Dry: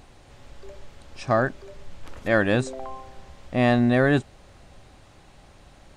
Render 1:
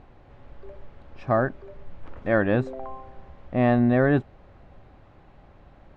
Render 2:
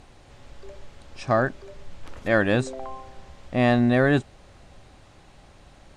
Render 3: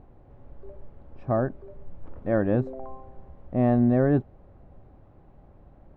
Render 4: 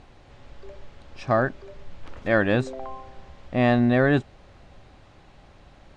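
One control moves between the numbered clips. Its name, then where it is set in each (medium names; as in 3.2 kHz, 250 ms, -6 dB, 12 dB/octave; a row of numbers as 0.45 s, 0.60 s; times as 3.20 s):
Bessel low-pass, frequency: 1.5 kHz, 11 kHz, 600 Hz, 4.1 kHz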